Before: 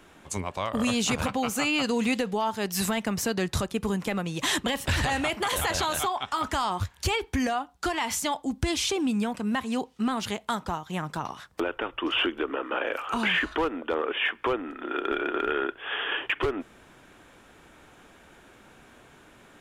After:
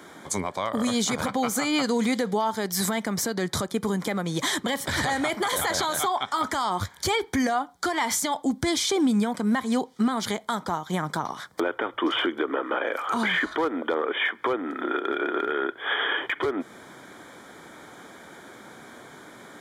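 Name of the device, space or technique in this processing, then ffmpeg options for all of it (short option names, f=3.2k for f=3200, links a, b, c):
PA system with an anti-feedback notch: -af "highpass=150,asuperstop=centerf=2700:order=4:qfactor=4,alimiter=level_in=0.5dB:limit=-24dB:level=0:latency=1:release=247,volume=-0.5dB,volume=8.5dB"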